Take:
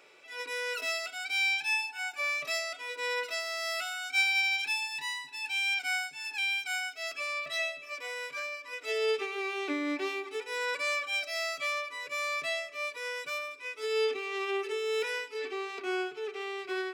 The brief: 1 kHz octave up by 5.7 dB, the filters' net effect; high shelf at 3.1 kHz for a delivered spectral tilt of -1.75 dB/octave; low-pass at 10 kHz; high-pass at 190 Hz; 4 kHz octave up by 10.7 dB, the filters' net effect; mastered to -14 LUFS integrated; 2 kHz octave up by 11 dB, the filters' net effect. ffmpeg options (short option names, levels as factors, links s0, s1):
-af "highpass=190,lowpass=10000,equalizer=f=1000:t=o:g=3.5,equalizer=f=2000:t=o:g=8.5,highshelf=f=3100:g=5,equalizer=f=4000:t=o:g=7,volume=2.37"